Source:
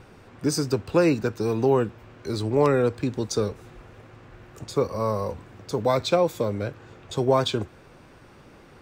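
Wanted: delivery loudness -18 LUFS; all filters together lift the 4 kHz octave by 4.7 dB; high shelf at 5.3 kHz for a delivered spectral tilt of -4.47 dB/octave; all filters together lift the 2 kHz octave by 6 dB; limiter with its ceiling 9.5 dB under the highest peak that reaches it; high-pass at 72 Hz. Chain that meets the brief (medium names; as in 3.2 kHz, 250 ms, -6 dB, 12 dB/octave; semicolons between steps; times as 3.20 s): high-pass 72 Hz; peaking EQ 2 kHz +7.5 dB; peaking EQ 4 kHz +6.5 dB; treble shelf 5.3 kHz -7.5 dB; trim +9.5 dB; peak limiter -6 dBFS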